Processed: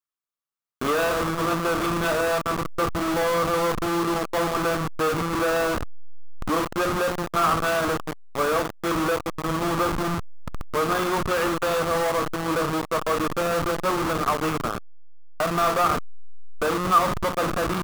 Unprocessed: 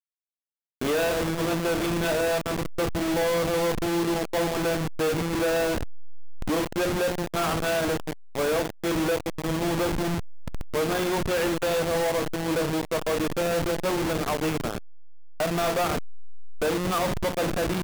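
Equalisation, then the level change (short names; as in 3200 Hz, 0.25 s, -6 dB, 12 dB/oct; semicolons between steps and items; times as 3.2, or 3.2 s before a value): bell 1200 Hz +12.5 dB 0.47 oct; 0.0 dB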